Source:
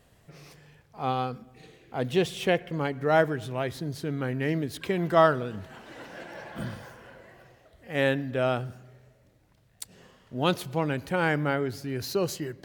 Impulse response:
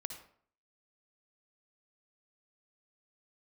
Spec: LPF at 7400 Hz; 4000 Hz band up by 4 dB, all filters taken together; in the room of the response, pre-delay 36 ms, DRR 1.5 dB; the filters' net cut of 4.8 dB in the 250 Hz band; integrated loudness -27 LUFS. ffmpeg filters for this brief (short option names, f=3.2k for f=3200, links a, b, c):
-filter_complex "[0:a]lowpass=7.4k,equalizer=f=250:t=o:g=-7.5,equalizer=f=4k:t=o:g=5.5,asplit=2[a][b];[1:a]atrim=start_sample=2205,adelay=36[c];[b][c]afir=irnorm=-1:irlink=0,volume=0dB[d];[a][d]amix=inputs=2:normalize=0,volume=-0.5dB"